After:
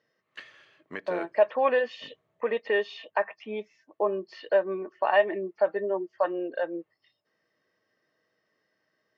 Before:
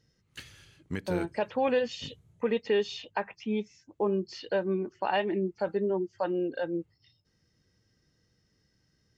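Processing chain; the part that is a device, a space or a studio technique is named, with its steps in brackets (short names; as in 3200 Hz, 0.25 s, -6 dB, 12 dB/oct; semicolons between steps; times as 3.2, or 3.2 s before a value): tin-can telephone (BPF 440–2700 Hz; small resonant body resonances 630/1100/1800 Hz, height 11 dB); gain +2.5 dB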